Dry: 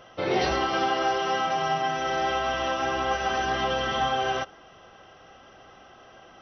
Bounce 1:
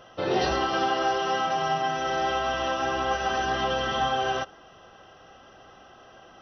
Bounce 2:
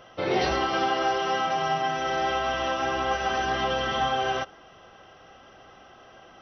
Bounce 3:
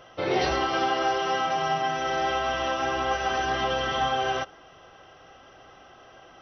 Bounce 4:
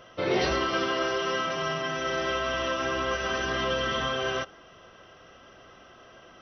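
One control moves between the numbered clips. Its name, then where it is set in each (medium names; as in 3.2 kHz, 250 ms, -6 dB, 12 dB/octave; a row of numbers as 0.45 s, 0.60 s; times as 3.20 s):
band-stop, frequency: 2.2 kHz, 6.8 kHz, 210 Hz, 790 Hz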